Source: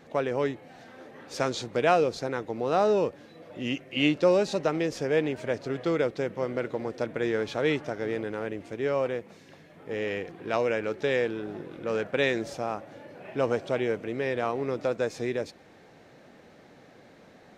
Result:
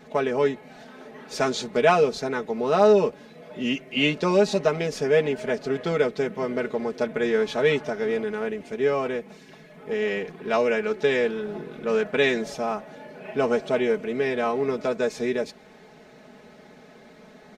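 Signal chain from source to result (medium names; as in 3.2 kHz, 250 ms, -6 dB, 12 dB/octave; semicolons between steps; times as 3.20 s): comb 4.7 ms, depth 87%; trim +2 dB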